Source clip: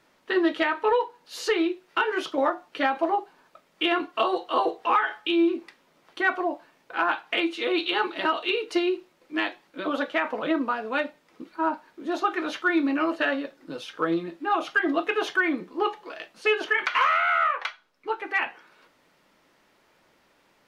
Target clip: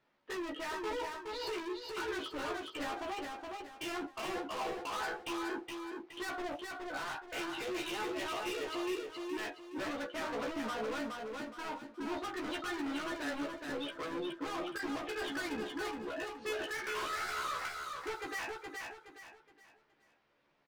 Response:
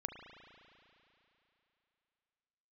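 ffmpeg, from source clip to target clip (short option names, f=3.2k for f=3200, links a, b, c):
-filter_complex "[0:a]lowpass=4.1k,afftdn=nr=14:nf=-36,alimiter=limit=-22.5dB:level=0:latency=1:release=221,asoftclip=type=hard:threshold=-39.5dB,asplit=2[a][b];[b]adelay=14,volume=-4dB[c];[a][c]amix=inputs=2:normalize=0,aecho=1:1:419|838|1257|1676:0.631|0.215|0.0729|0.0248"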